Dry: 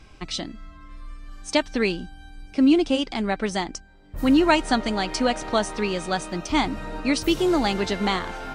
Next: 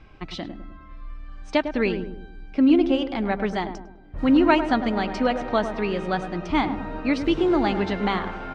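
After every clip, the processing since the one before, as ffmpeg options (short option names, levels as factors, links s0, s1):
-filter_complex "[0:a]lowpass=2700,asplit=2[s0][s1];[s1]adelay=103,lowpass=f=930:p=1,volume=0.422,asplit=2[s2][s3];[s3]adelay=103,lowpass=f=930:p=1,volume=0.49,asplit=2[s4][s5];[s5]adelay=103,lowpass=f=930:p=1,volume=0.49,asplit=2[s6][s7];[s7]adelay=103,lowpass=f=930:p=1,volume=0.49,asplit=2[s8][s9];[s9]adelay=103,lowpass=f=930:p=1,volume=0.49,asplit=2[s10][s11];[s11]adelay=103,lowpass=f=930:p=1,volume=0.49[s12];[s0][s2][s4][s6][s8][s10][s12]amix=inputs=7:normalize=0"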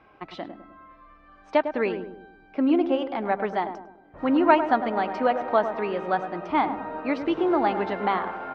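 -af "bandpass=f=830:t=q:w=0.86:csg=0,volume=1.41"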